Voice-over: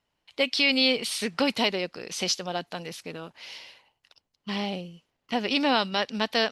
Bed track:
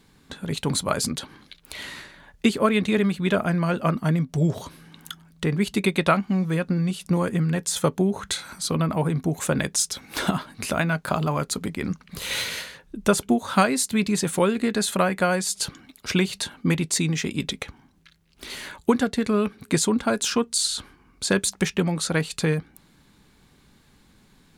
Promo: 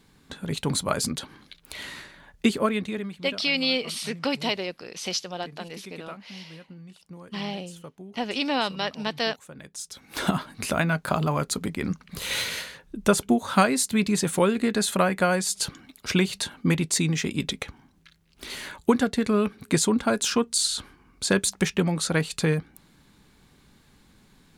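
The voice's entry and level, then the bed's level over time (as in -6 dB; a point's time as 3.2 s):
2.85 s, -2.0 dB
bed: 2.56 s -1.5 dB
3.5 s -21.5 dB
9.54 s -21.5 dB
10.28 s -0.5 dB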